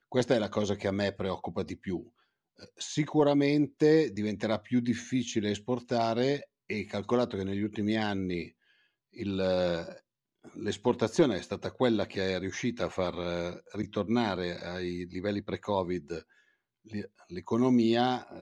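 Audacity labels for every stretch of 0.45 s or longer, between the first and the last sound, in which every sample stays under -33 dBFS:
1.990000	2.810000	silence
8.430000	9.200000	silence
9.890000	10.590000	silence
16.190000	16.940000	silence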